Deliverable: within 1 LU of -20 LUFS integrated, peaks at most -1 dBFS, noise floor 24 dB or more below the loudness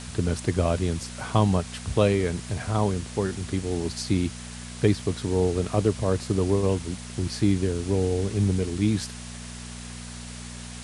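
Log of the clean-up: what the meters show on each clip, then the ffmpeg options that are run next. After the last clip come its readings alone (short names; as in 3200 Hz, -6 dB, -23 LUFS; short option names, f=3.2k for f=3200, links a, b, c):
hum 60 Hz; harmonics up to 240 Hz; hum level -37 dBFS; noise floor -39 dBFS; noise floor target -50 dBFS; loudness -26.0 LUFS; peak -6.0 dBFS; loudness target -20.0 LUFS
-> -af "bandreject=f=60:t=h:w=4,bandreject=f=120:t=h:w=4,bandreject=f=180:t=h:w=4,bandreject=f=240:t=h:w=4"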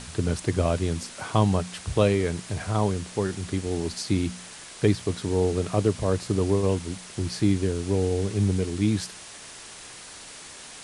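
hum none; noise floor -43 dBFS; noise floor target -50 dBFS
-> -af "afftdn=nr=7:nf=-43"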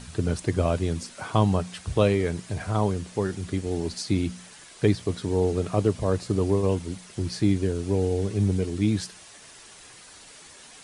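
noise floor -48 dBFS; noise floor target -50 dBFS
-> -af "afftdn=nr=6:nf=-48"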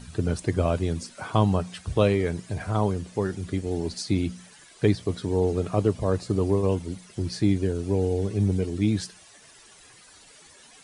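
noise floor -52 dBFS; loudness -26.0 LUFS; peak -6.0 dBFS; loudness target -20.0 LUFS
-> -af "volume=6dB,alimiter=limit=-1dB:level=0:latency=1"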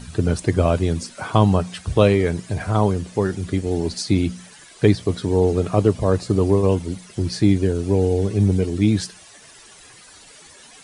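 loudness -20.0 LUFS; peak -1.0 dBFS; noise floor -46 dBFS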